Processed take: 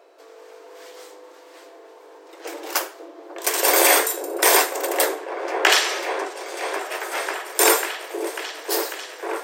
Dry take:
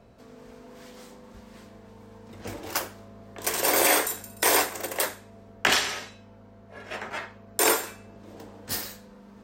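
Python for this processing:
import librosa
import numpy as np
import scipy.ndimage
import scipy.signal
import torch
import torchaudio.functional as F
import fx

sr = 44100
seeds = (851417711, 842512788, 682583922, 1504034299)

y = fx.brickwall_highpass(x, sr, low_hz=300.0)
y = fx.echo_opening(y, sr, ms=545, hz=400, octaves=1, feedback_pct=70, wet_db=-3)
y = y * librosa.db_to_amplitude(5.5)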